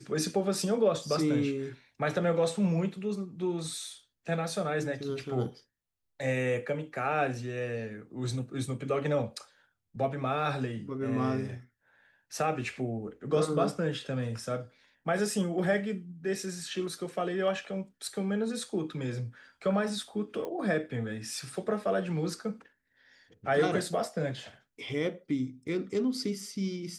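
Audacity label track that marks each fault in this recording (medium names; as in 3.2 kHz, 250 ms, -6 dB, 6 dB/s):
20.450000	20.450000	pop -25 dBFS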